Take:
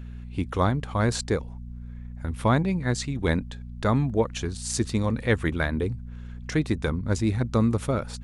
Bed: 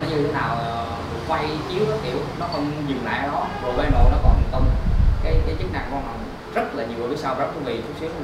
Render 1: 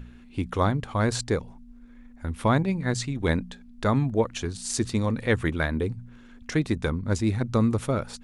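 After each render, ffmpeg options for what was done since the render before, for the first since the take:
-af "bandreject=f=60:t=h:w=4,bandreject=f=120:t=h:w=4,bandreject=f=180:t=h:w=4"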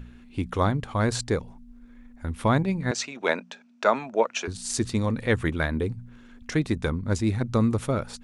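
-filter_complex "[0:a]asettb=1/sr,asplit=3[a][b][c];[a]atrim=end=2.914[d];[b]atrim=start=2.91:end=4.48,asetpts=PTS-STARTPTS,afade=t=in:d=0.004:c=qsin,afade=t=out:st=1.566:d=0.004:c=qsin,highpass=f=260:w=0.5412,highpass=f=260:w=1.3066,equalizer=f=290:t=q:w=4:g=-9,equalizer=f=630:t=q:w=4:g=8,equalizer=f=920:t=q:w=4:g=5,equalizer=f=1.4k:t=q:w=4:g=7,equalizer=f=2.5k:t=q:w=4:g=9,equalizer=f=5.8k:t=q:w=4:g=6,lowpass=f=8k:w=0.5412,lowpass=f=8k:w=1.3066[e];[c]atrim=start=4.476[f];[d][e]acrossfade=d=0.004:c1=hsin:c2=qsin[g];[g][f]acrossfade=d=0.004:c1=qsin:c2=hsin"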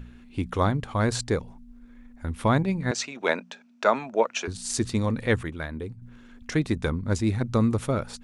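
-filter_complex "[0:a]asplit=3[a][b][c];[a]atrim=end=5.432[d];[b]atrim=start=5.428:end=6.022,asetpts=PTS-STARTPTS,volume=-7.5dB[e];[c]atrim=start=6.018[f];[d][e]acrossfade=d=0.004:c1=hsin:c2=hsin[g];[g][f]acrossfade=d=0.004:c1=hsin:c2=hsin"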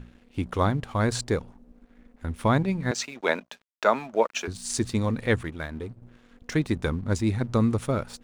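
-af "aeval=exprs='sgn(val(0))*max(abs(val(0))-0.00299,0)':c=same"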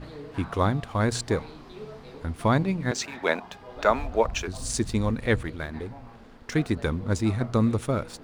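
-filter_complex "[1:a]volume=-19.5dB[a];[0:a][a]amix=inputs=2:normalize=0"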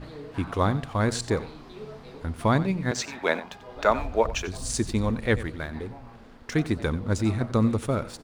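-af "aecho=1:1:91:0.158"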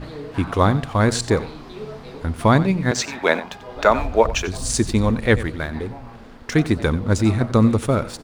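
-af "volume=7dB,alimiter=limit=-1dB:level=0:latency=1"

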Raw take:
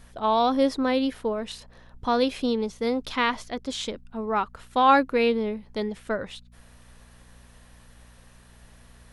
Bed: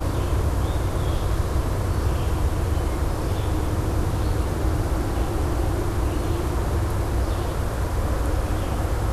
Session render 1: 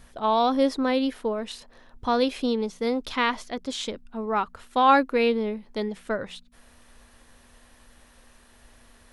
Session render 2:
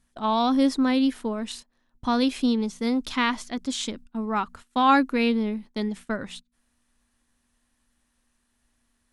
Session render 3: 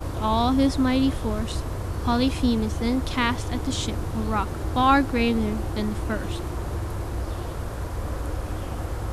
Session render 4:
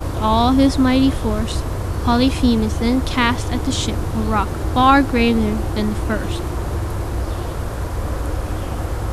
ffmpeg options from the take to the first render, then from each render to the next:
-af "bandreject=f=60:t=h:w=4,bandreject=f=120:t=h:w=4,bandreject=f=180:t=h:w=4"
-af "agate=range=-18dB:threshold=-42dB:ratio=16:detection=peak,equalizer=f=250:t=o:w=1:g=6,equalizer=f=500:t=o:w=1:g=-7,equalizer=f=8k:t=o:w=1:g=6"
-filter_complex "[1:a]volume=-6dB[a];[0:a][a]amix=inputs=2:normalize=0"
-af "volume=6.5dB,alimiter=limit=-2dB:level=0:latency=1"

